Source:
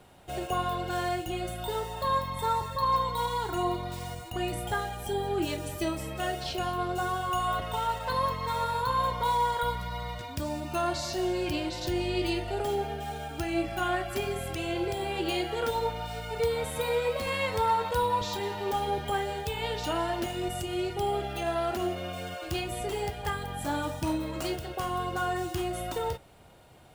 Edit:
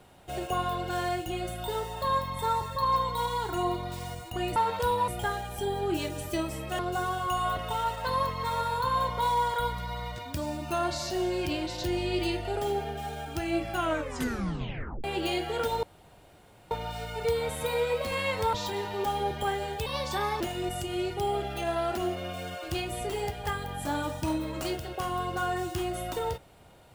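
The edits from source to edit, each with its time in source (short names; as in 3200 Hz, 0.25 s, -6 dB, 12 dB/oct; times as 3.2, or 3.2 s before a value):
6.27–6.82 cut
13.8 tape stop 1.27 s
15.86 insert room tone 0.88 s
17.68–18.2 move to 4.56
19.53–20.2 speed 123%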